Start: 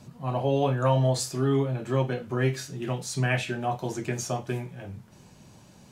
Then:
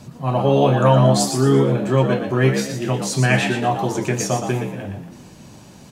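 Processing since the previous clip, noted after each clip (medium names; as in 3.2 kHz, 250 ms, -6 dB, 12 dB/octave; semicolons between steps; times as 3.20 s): frequency-shifting echo 118 ms, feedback 34%, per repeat +73 Hz, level -7 dB; trim +8.5 dB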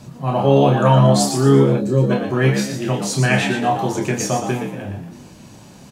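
time-frequency box 1.78–2.11 s, 560–3700 Hz -13 dB; doubling 29 ms -6.5 dB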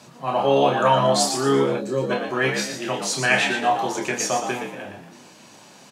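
frequency weighting A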